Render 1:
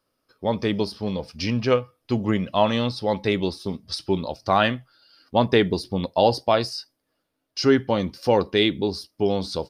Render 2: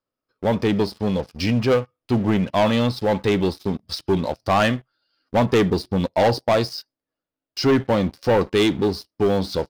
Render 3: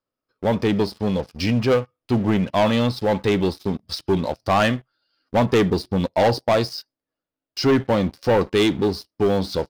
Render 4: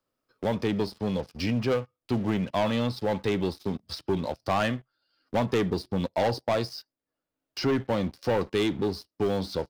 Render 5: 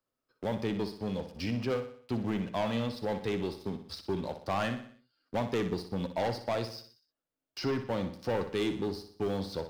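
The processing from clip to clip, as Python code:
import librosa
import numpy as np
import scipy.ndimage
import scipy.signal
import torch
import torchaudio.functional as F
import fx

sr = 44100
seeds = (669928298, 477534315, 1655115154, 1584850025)

y1 = fx.high_shelf(x, sr, hz=5000.0, db=-10.0)
y1 = fx.leveller(y1, sr, passes=3)
y1 = y1 * 10.0 ** (-5.5 / 20.0)
y2 = y1
y3 = fx.band_squash(y2, sr, depth_pct=40)
y3 = y3 * 10.0 ** (-7.5 / 20.0)
y4 = fx.echo_feedback(y3, sr, ms=61, feedback_pct=48, wet_db=-10)
y4 = y4 * 10.0 ** (-6.0 / 20.0)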